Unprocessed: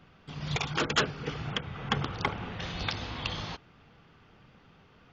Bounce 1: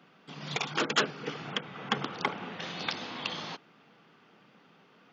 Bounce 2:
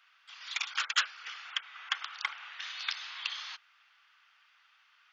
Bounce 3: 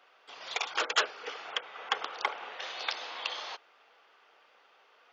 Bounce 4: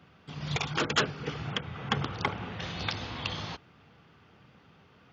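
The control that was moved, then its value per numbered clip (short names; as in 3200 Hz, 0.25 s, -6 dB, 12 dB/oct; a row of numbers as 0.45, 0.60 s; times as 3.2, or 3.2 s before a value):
HPF, cutoff: 180, 1300, 500, 67 Hz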